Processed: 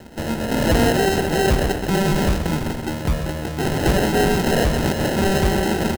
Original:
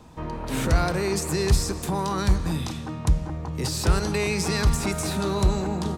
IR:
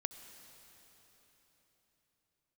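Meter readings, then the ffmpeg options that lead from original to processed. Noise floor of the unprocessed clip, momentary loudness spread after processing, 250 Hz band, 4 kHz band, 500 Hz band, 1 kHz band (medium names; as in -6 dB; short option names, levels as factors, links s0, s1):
-34 dBFS, 7 LU, +7.5 dB, +5.0 dB, +8.0 dB, +6.5 dB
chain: -filter_complex "[0:a]asplit=2[s0][s1];[s1]highpass=f=720:p=1,volume=6.31,asoftclip=type=tanh:threshold=0.335[s2];[s0][s2]amix=inputs=2:normalize=0,lowpass=f=4100:p=1,volume=0.501,acrusher=samples=38:mix=1:aa=0.000001,asplit=2[s3][s4];[s4]adelay=128.3,volume=0.355,highshelf=f=4000:g=-2.89[s5];[s3][s5]amix=inputs=2:normalize=0,volume=1.41"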